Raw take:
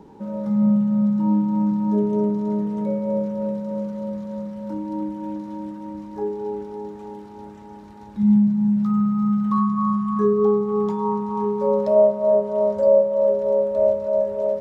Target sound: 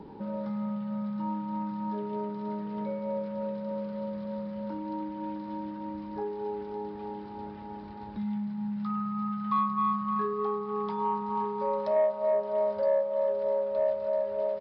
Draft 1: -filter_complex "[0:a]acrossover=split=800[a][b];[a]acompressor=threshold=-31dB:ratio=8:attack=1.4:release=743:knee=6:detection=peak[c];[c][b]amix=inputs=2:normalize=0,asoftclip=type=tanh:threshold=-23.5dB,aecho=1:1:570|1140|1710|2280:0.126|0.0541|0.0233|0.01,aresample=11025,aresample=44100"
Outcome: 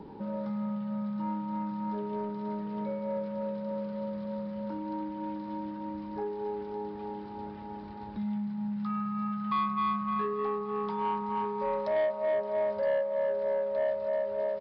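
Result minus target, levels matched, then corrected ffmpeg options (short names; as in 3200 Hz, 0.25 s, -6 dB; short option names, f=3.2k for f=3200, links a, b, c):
soft clip: distortion +11 dB
-filter_complex "[0:a]acrossover=split=800[a][b];[a]acompressor=threshold=-31dB:ratio=8:attack=1.4:release=743:knee=6:detection=peak[c];[c][b]amix=inputs=2:normalize=0,asoftclip=type=tanh:threshold=-16dB,aecho=1:1:570|1140|1710|2280:0.126|0.0541|0.0233|0.01,aresample=11025,aresample=44100"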